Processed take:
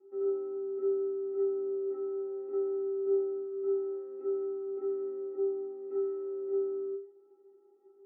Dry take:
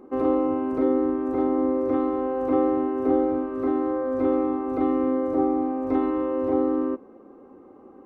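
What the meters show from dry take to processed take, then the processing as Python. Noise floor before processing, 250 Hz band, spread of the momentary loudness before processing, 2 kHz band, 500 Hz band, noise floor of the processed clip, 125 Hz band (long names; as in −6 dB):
−49 dBFS, −17.5 dB, 3 LU, below −30 dB, −6.0 dB, −62 dBFS, below −35 dB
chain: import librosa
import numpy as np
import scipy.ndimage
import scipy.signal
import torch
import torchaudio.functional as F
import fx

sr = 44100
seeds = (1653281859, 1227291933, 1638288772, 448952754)

y = fx.cabinet(x, sr, low_hz=160.0, low_slope=24, high_hz=2000.0, hz=(220.0, 370.0, 970.0), db=(-4, 9, -10))
y = fx.stiff_resonator(y, sr, f0_hz=390.0, decay_s=0.46, stiffness=0.03)
y = F.gain(torch.from_numpy(y), -2.5).numpy()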